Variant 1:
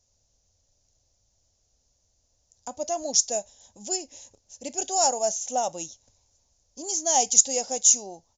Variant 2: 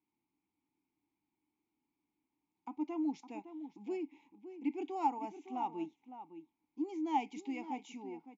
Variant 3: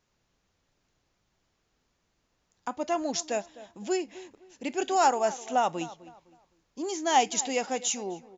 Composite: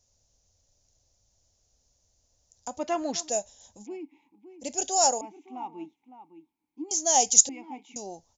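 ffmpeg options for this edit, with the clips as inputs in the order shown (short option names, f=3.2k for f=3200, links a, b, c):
-filter_complex "[1:a]asplit=3[a][b][c];[0:a]asplit=5[d][e][f][g][h];[d]atrim=end=2.792[i];[2:a]atrim=start=2.788:end=3.292[j];[e]atrim=start=3.288:end=3.87[k];[a]atrim=start=3.81:end=4.65[l];[f]atrim=start=4.59:end=5.212[m];[b]atrim=start=5.208:end=6.912[n];[g]atrim=start=6.908:end=7.492[o];[c]atrim=start=7.488:end=7.962[p];[h]atrim=start=7.958[q];[i][j]acrossfade=d=0.004:c1=hsin:c2=hsin[r];[r][k]acrossfade=d=0.004:c1=hsin:c2=hsin[s];[s][l]acrossfade=d=0.06:c1=tri:c2=tri[t];[t][m]acrossfade=d=0.06:c1=tri:c2=tri[u];[u][n]acrossfade=d=0.004:c1=hsin:c2=hsin[v];[v][o]acrossfade=d=0.004:c1=hsin:c2=hsin[w];[w][p]acrossfade=d=0.004:c1=hsin:c2=hsin[x];[x][q]acrossfade=d=0.004:c1=hsin:c2=hsin"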